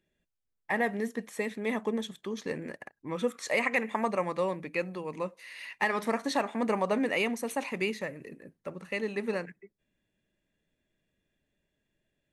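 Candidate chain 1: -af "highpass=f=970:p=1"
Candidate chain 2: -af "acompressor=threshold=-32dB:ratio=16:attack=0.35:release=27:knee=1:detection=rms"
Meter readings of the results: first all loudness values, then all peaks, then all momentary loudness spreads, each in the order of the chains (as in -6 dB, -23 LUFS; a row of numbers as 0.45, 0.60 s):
-36.0, -39.5 LUFS; -16.5, -28.0 dBFS; 13, 7 LU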